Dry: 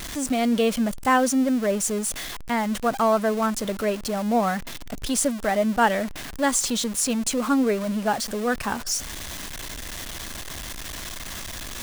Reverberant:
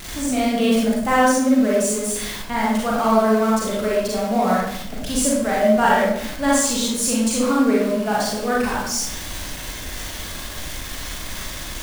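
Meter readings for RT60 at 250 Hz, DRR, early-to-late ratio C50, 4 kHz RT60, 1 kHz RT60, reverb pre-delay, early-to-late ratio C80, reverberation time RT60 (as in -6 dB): 0.95 s, -5.5 dB, -0.5 dB, 0.55 s, 0.70 s, 33 ms, 3.5 dB, 0.75 s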